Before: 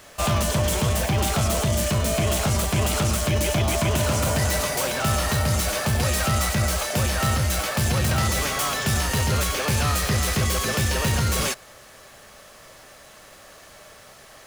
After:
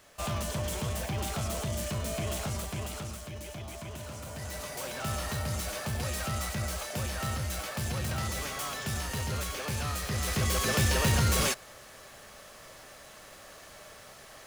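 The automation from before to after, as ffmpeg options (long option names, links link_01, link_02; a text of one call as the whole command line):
ffmpeg -i in.wav -af "volume=5.5dB,afade=type=out:start_time=2.36:duration=0.9:silence=0.375837,afade=type=in:start_time=4.29:duration=0.79:silence=0.375837,afade=type=in:start_time=10.08:duration=0.69:silence=0.398107" out.wav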